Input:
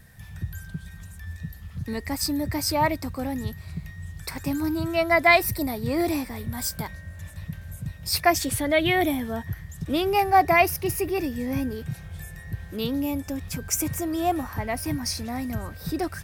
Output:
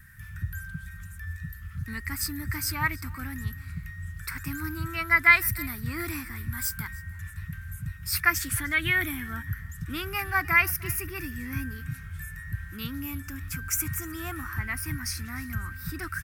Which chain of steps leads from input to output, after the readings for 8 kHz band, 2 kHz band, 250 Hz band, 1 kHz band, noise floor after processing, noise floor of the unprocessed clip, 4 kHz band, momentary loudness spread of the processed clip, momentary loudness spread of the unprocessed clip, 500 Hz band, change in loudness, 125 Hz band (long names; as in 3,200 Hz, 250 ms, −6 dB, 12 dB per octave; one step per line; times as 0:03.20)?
−2.0 dB, +2.5 dB, −10.0 dB, −9.5 dB, −43 dBFS, −43 dBFS, −6.0 dB, 17 LU, 18 LU, −18.0 dB, −3.5 dB, −1.0 dB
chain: drawn EQ curve 100 Hz 0 dB, 340 Hz −12 dB, 570 Hz −27 dB, 850 Hz −15 dB, 1,400 Hz +8 dB, 3,800 Hz −8 dB, 14,000 Hz +2 dB
on a send: single-tap delay 305 ms −22 dB